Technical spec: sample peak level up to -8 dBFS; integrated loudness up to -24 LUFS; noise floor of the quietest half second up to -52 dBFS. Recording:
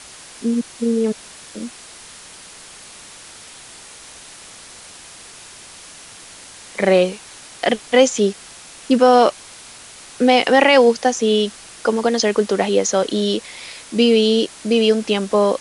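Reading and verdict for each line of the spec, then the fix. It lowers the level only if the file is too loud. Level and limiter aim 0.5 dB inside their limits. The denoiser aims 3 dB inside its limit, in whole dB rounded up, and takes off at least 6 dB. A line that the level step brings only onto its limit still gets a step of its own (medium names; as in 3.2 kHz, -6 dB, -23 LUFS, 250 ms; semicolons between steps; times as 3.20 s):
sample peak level -2.0 dBFS: fail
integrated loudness -17.0 LUFS: fail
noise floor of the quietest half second -40 dBFS: fail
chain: noise reduction 8 dB, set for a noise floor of -40 dBFS; trim -7.5 dB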